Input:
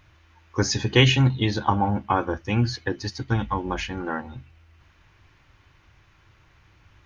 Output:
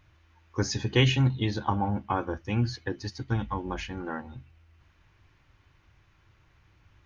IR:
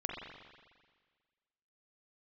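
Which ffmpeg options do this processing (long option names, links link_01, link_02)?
-af "lowshelf=frequency=420:gain=3,volume=-7dB"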